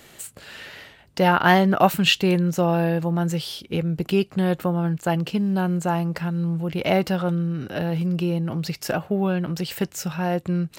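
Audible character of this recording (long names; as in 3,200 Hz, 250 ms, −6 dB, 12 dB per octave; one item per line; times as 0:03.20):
background noise floor −50 dBFS
spectral slope −5.0 dB per octave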